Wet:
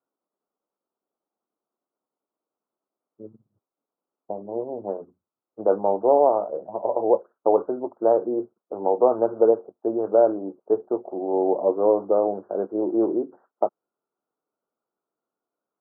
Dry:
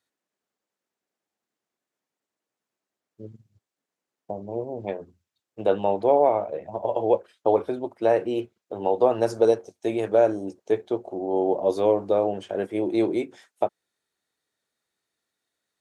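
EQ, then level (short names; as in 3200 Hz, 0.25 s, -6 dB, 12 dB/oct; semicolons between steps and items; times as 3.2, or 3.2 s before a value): HPF 240 Hz 12 dB/oct; steep low-pass 1400 Hz 72 dB/oct; air absorption 440 m; +3.0 dB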